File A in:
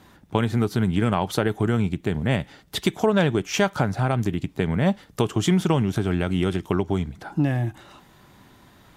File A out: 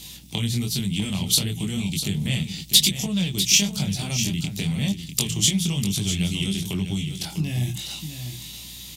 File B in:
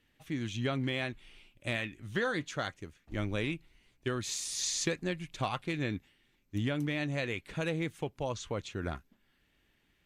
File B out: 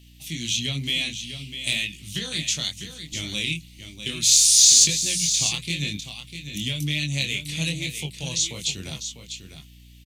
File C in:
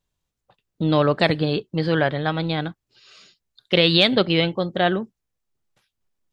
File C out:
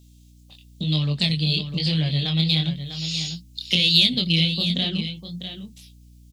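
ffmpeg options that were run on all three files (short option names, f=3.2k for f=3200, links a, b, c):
-filter_complex "[0:a]equalizer=f=160:t=o:w=1.1:g=14,bandreject=f=60:t=h:w=6,bandreject=f=120:t=h:w=6,bandreject=f=180:t=h:w=6,acrossover=split=230[a][b];[a]alimiter=limit=-16dB:level=0:latency=1[c];[b]acompressor=threshold=-31dB:ratio=6[d];[c][d]amix=inputs=2:normalize=0,flanger=delay=19.5:depth=6.1:speed=1,aexciter=amount=10.1:drive=9.2:freq=2.4k,aeval=exprs='val(0)+0.00447*(sin(2*PI*60*n/s)+sin(2*PI*2*60*n/s)/2+sin(2*PI*3*60*n/s)/3+sin(2*PI*4*60*n/s)/4+sin(2*PI*5*60*n/s)/5)':c=same,asplit=2[e][f];[f]aecho=0:1:649:0.335[g];[e][g]amix=inputs=2:normalize=0,volume=-2.5dB"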